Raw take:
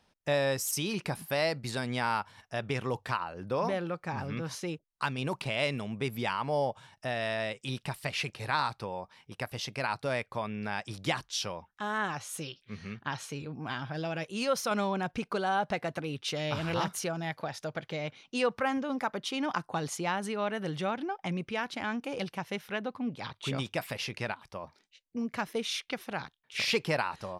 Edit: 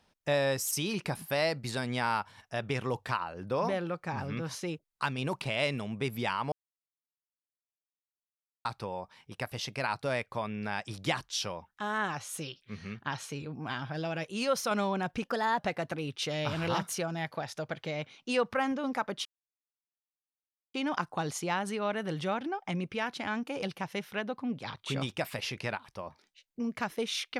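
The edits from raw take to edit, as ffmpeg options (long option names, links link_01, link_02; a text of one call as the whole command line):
ffmpeg -i in.wav -filter_complex "[0:a]asplit=6[link_01][link_02][link_03][link_04][link_05][link_06];[link_01]atrim=end=6.52,asetpts=PTS-STARTPTS,afade=type=out:start_time=6.516:duration=0.004:curve=hsin[link_07];[link_02]atrim=start=6.52:end=8.65,asetpts=PTS-STARTPTS,volume=0[link_08];[link_03]atrim=start=8.65:end=15.234,asetpts=PTS-STARTPTS,afade=type=in:duration=0.004:curve=hsin[link_09];[link_04]atrim=start=15.23:end=15.65,asetpts=PTS-STARTPTS,asetrate=51156,aresample=44100,atrim=end_sample=15967,asetpts=PTS-STARTPTS[link_10];[link_05]atrim=start=15.646:end=19.31,asetpts=PTS-STARTPTS,afade=type=out:start_time=3.66:duration=0.004:curve=hsin,apad=pad_dur=1.49[link_11];[link_06]atrim=start=19.31,asetpts=PTS-STARTPTS,afade=type=in:duration=0.004:curve=hsin[link_12];[link_07][link_08][link_09]concat=n=3:v=0:a=1[link_13];[link_13][link_10]acrossfade=duration=0.004:curve1=hsin:curve2=hsin[link_14];[link_11][link_12]concat=n=2:v=0:a=1[link_15];[link_14][link_15]acrossfade=duration=0.004:curve1=hsin:curve2=hsin" out.wav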